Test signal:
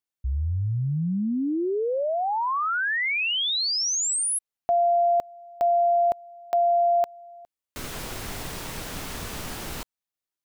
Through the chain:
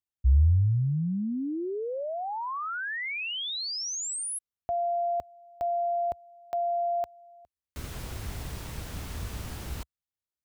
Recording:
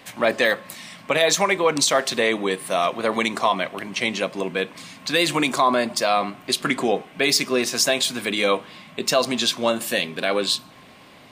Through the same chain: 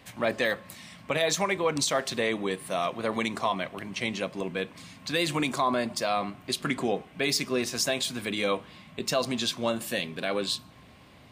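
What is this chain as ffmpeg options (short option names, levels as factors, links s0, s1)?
-af "equalizer=f=69:w=0.7:g=15,volume=0.398"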